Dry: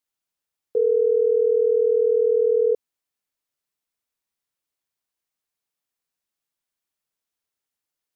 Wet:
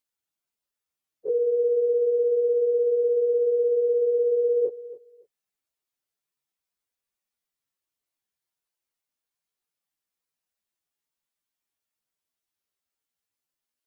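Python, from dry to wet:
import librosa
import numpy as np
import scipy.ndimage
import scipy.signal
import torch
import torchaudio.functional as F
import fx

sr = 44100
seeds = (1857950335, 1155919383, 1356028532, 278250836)

y = fx.stretch_vocoder_free(x, sr, factor=1.7)
y = fx.echo_feedback(y, sr, ms=281, feedback_pct=21, wet_db=-17)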